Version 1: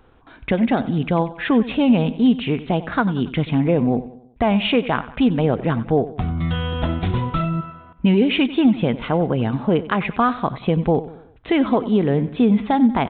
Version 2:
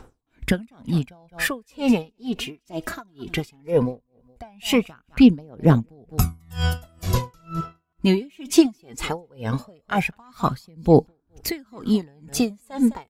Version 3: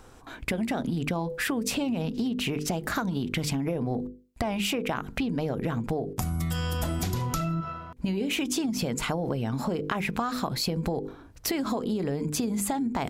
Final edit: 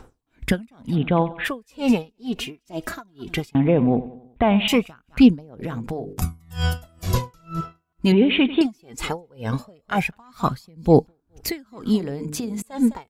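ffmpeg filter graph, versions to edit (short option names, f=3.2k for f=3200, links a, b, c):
-filter_complex "[0:a]asplit=3[a][b][c];[2:a]asplit=2[d][e];[1:a]asplit=6[f][g][h][i][j][k];[f]atrim=end=0.97[l];[a]atrim=start=0.91:end=1.5[m];[g]atrim=start=1.44:end=3.552[n];[b]atrim=start=3.548:end=4.682[o];[h]atrim=start=4.678:end=5.612[p];[d]atrim=start=5.608:end=6.222[q];[i]atrim=start=6.218:end=8.122[r];[c]atrim=start=8.118:end=8.612[s];[j]atrim=start=8.608:end=12.002[t];[e]atrim=start=11.998:end=12.622[u];[k]atrim=start=12.618[v];[l][m]acrossfade=d=0.06:c1=tri:c2=tri[w];[w][n]acrossfade=d=0.06:c1=tri:c2=tri[x];[x][o]acrossfade=d=0.004:c1=hsin:c2=hsin[y];[y][p]acrossfade=d=0.004:c1=hsin:c2=hsin[z];[z][q]acrossfade=d=0.004:c1=hsin:c2=hsin[aa];[aa][r]acrossfade=d=0.004:c1=hsin:c2=hsin[ab];[ab][s]acrossfade=d=0.004:c1=hsin:c2=hsin[ac];[ac][t]acrossfade=d=0.004:c1=hsin:c2=hsin[ad];[ad][u]acrossfade=d=0.004:c1=hsin:c2=hsin[ae];[ae][v]acrossfade=d=0.004:c1=hsin:c2=hsin"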